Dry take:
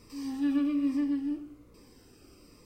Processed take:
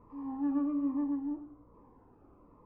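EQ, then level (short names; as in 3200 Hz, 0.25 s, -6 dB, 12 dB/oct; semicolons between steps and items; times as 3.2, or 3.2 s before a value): synth low-pass 960 Hz, resonance Q 4.7; air absorption 290 m; bell 370 Hz -3 dB 0.29 oct; -3.5 dB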